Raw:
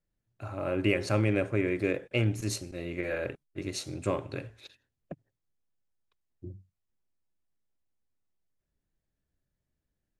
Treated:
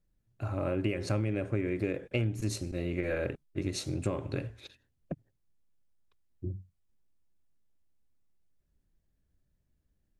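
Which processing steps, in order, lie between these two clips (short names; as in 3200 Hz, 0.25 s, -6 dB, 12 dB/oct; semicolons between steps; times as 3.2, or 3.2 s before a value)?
bell 120 Hz -3 dB 0.79 oct; wow and flutter 24 cents; low shelf 280 Hz +10 dB; compressor 6:1, threshold -27 dBFS, peak gain reduction 10.5 dB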